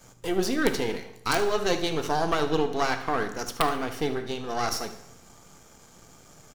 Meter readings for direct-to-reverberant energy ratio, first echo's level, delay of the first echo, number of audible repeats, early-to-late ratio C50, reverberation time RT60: 8.0 dB, -14.5 dB, 75 ms, 1, 10.0 dB, 0.85 s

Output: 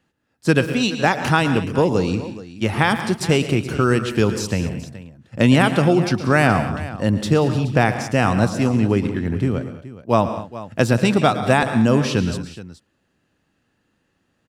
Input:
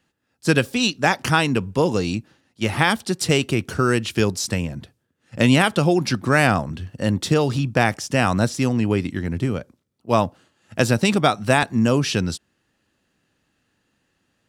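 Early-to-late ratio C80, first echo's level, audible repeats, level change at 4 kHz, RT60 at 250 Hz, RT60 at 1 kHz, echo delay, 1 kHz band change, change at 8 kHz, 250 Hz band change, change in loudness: none, -14.5 dB, 4, -2.0 dB, none, none, 0.113 s, +1.5 dB, -3.5 dB, +2.5 dB, +1.5 dB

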